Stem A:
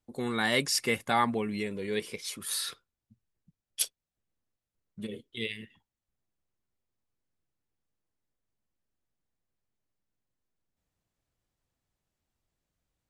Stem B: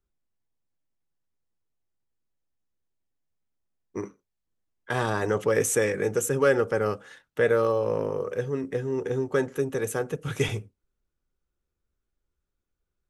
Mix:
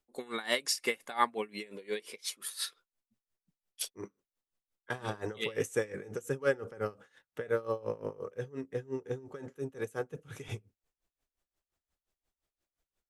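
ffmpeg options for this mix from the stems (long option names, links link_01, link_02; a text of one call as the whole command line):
ffmpeg -i stem1.wav -i stem2.wav -filter_complex "[0:a]highpass=350,volume=1.5dB[link_01];[1:a]volume=-5.5dB[link_02];[link_01][link_02]amix=inputs=2:normalize=0,aeval=exprs='val(0)*pow(10,-20*(0.5-0.5*cos(2*PI*5.7*n/s))/20)':channel_layout=same" out.wav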